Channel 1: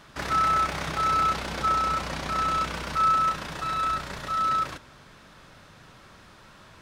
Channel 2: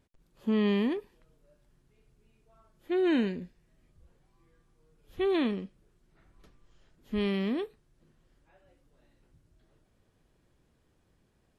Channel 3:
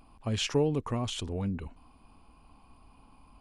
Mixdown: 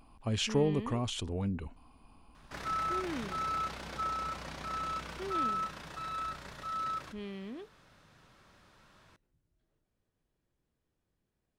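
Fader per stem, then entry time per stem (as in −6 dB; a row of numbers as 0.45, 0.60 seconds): −11.0, −13.0, −1.5 decibels; 2.35, 0.00, 0.00 seconds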